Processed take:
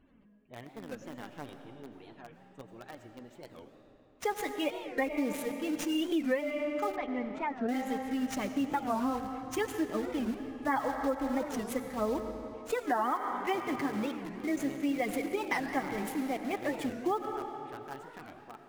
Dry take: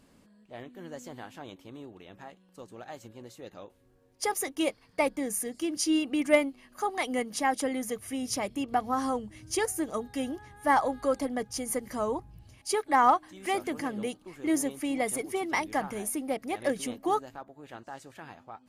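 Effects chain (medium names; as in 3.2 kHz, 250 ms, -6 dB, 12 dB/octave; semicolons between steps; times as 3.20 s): median filter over 9 samples; peaking EQ 730 Hz -4.5 dB 2.3 oct; spectral gate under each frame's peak -30 dB strong; flange 0.98 Hz, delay 2.6 ms, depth 5.3 ms, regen +20%; in parallel at -6.5 dB: bit crusher 7-bit; on the sum: reverberation RT60 3.1 s, pre-delay 50 ms, DRR 7.5 dB; compression 12:1, threshold -28 dBFS, peak gain reduction 11 dB; 6.96–7.69 s: tape spacing loss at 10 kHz 34 dB; warped record 45 rpm, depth 250 cents; trim +2 dB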